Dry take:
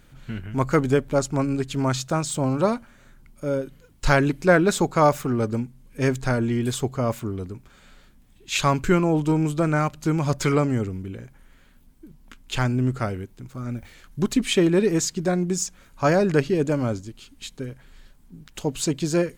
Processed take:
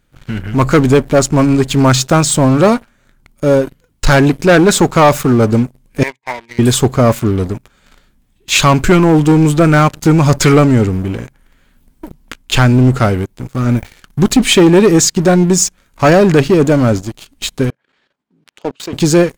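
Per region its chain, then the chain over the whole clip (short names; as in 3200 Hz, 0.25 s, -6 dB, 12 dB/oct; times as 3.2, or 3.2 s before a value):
6.03–6.59 double band-pass 1400 Hz, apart 1.1 oct + expander -49 dBFS
17.7–18.93 level quantiser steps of 16 dB + BPF 320–3700 Hz
whole clip: sample leveller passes 3; AGC gain up to 11.5 dB; gain -1 dB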